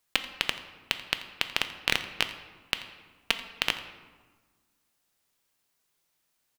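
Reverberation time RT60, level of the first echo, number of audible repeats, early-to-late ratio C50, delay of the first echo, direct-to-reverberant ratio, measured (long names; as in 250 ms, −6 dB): 1.4 s, −18.0 dB, 1, 10.5 dB, 85 ms, 8.0 dB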